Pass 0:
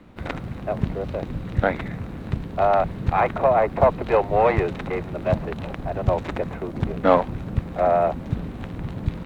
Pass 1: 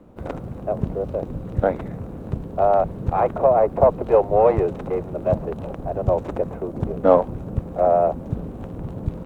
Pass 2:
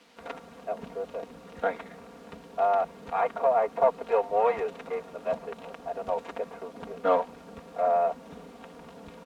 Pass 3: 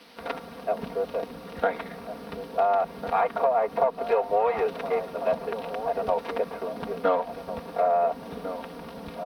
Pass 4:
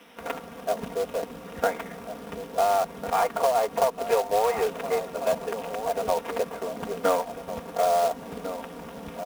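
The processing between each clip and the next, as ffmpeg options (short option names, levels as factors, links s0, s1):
-af "equalizer=f=500:t=o:w=1:g=6,equalizer=f=2000:t=o:w=1:g=-10,equalizer=f=4000:t=o:w=1:g=-9,volume=0.891"
-af "aecho=1:1:4.3:0.85,acrusher=bits=8:mix=0:aa=0.000001,bandpass=f=2800:t=q:w=0.69:csg=0"
-filter_complex "[0:a]acompressor=threshold=0.0501:ratio=6,aexciter=amount=1.1:drive=1.5:freq=3900,asplit=2[s0][s1];[s1]adelay=1399,volume=0.316,highshelf=f=4000:g=-31.5[s2];[s0][s2]amix=inputs=2:normalize=0,volume=2.11"
-filter_complex "[0:a]acrossover=split=2700[s0][s1];[s0]acrusher=bits=3:mode=log:mix=0:aa=0.000001[s2];[s1]asuperstop=centerf=4400:order=4:qfactor=3[s3];[s2][s3]amix=inputs=2:normalize=0"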